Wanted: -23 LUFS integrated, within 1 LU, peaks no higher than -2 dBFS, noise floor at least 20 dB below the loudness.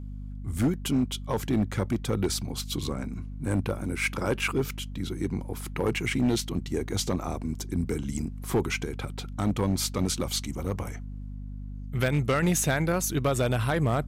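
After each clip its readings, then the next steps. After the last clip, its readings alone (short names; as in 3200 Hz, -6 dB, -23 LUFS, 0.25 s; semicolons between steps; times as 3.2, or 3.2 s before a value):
clipped 1.0%; flat tops at -18.5 dBFS; hum 50 Hz; harmonics up to 250 Hz; hum level -35 dBFS; loudness -29.0 LUFS; peak -18.5 dBFS; loudness target -23.0 LUFS
-> clip repair -18.5 dBFS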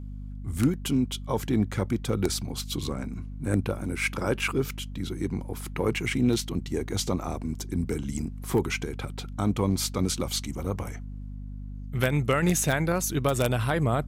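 clipped 0.0%; hum 50 Hz; harmonics up to 250 Hz; hum level -35 dBFS
-> notches 50/100/150/200/250 Hz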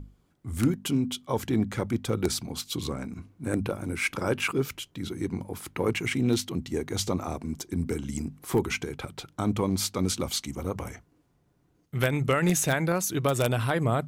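hum none; loudness -29.0 LUFS; peak -9.5 dBFS; loudness target -23.0 LUFS
-> gain +6 dB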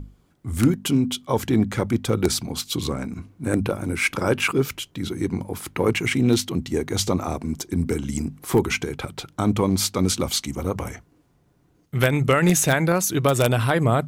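loudness -23.0 LUFS; peak -3.5 dBFS; noise floor -61 dBFS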